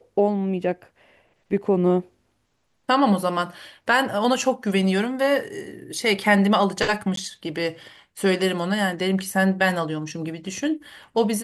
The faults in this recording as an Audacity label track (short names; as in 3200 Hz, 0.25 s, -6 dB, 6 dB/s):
7.160000	7.170000	gap 13 ms